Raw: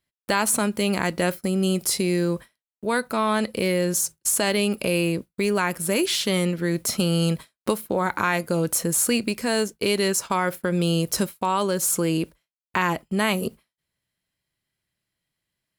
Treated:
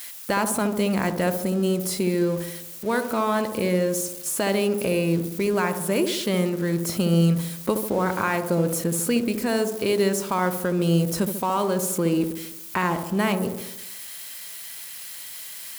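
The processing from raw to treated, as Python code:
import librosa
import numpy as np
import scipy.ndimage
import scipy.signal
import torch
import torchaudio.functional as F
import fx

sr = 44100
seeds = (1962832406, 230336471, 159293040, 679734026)

y = x + 0.5 * 10.0 ** (-22.0 / 20.0) * np.diff(np.sign(x), prepend=np.sign(x[:1]))
y = fx.high_shelf(y, sr, hz=2500.0, db=-9.0)
y = fx.echo_wet_lowpass(y, sr, ms=71, feedback_pct=57, hz=970.0, wet_db=-6)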